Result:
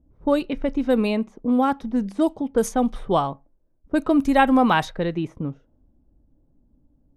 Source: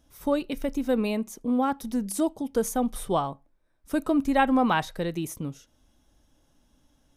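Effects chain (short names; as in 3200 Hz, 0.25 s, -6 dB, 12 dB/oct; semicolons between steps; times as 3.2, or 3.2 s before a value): low-pass opened by the level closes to 360 Hz, open at -20 dBFS; gain +5 dB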